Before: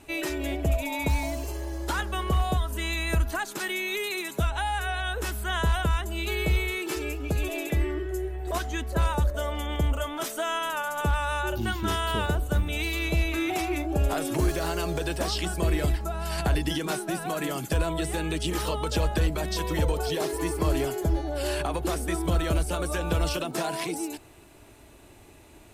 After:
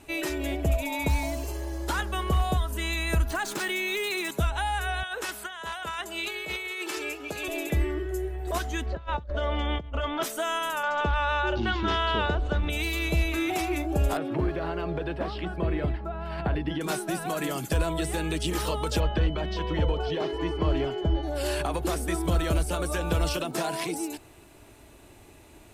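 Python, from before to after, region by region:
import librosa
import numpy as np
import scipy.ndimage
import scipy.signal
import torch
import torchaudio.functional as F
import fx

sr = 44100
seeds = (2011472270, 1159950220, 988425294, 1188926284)

y = fx.chain(x, sr, fx.median_filter(points=3),
    fx.env_flatten(amount_pct=50), at=(3.3, 4.31))
y = fx.chain(y, sr, fx.weighting(curve='A'),
    fx.over_compress(threshold_db=-33.0, ratio=-0.5), at=(5.03, 7.48))
y = fx.chain(y, sr, fx.lowpass(hz=4300.0, slope=24),
    fx.over_compress(threshold_db=-29.0, ratio=-0.5), at=(8.86, 10.23))
y = fx.chain(y, sr, fx.lowpass(hz=4700.0, slope=24),
    fx.peak_eq(hz=120.0, db=-8.0, octaves=1.4),
    fx.env_flatten(amount_pct=50), at=(10.83, 12.7))
y = fx.chain(y, sr, fx.highpass(hz=73.0, slope=12),
    fx.air_absorb(metres=420.0), at=(14.17, 16.81))
y = fx.dmg_tone(y, sr, hz=3000.0, level_db=-40.0, at=(18.99, 21.22), fade=0.02)
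y = fx.air_absorb(y, sr, metres=230.0, at=(18.99, 21.22), fade=0.02)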